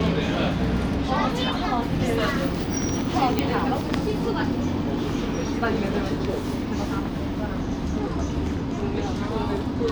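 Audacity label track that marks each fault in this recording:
3.390000	3.390000	pop -7 dBFS

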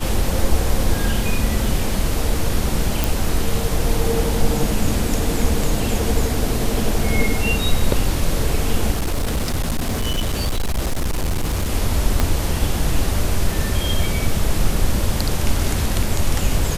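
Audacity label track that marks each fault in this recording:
3.040000	3.040000	pop
8.920000	11.700000	clipped -16.5 dBFS
12.200000	12.200000	pop -3 dBFS

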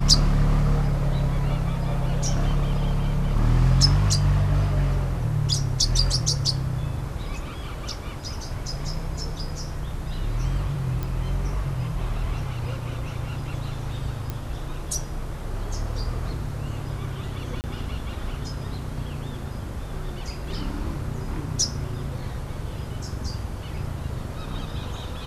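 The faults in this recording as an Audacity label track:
11.030000	11.030000	pop
14.300000	14.300000	pop -15 dBFS
17.610000	17.640000	dropout 29 ms

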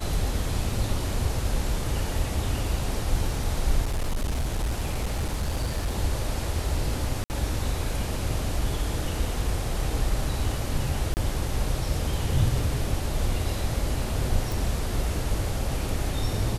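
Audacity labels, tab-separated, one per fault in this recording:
3.840000	5.950000	clipped -22.5 dBFS
7.240000	7.300000	dropout 59 ms
11.140000	11.170000	dropout 29 ms
14.520000	14.520000	pop

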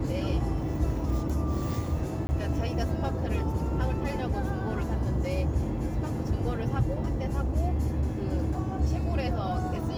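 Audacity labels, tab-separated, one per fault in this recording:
2.270000	2.290000	dropout 20 ms

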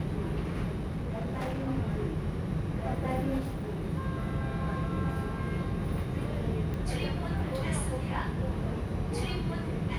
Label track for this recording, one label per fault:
0.750000	1.680000	clipped -30 dBFS
3.390000	3.850000	clipped -31 dBFS
6.740000	6.740000	pop -25 dBFS

